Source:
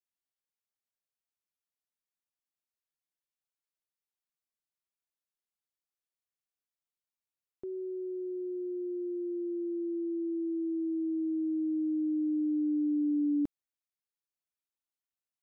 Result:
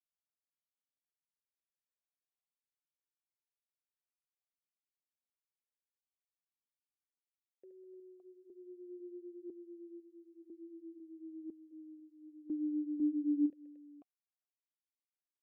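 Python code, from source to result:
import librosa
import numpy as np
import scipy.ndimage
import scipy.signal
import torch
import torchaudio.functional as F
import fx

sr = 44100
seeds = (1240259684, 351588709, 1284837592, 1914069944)

y = fx.comb(x, sr, ms=1.4, depth=0.94, at=(10.41, 11.71), fade=0.02)
y = fx.echo_multitap(y, sr, ms=(73, 202, 302, 565), db=(-7.5, -14.0, -12.5, -4.0))
y = fx.vowel_held(y, sr, hz=2.0)
y = y * 10.0 ** (-4.0 / 20.0)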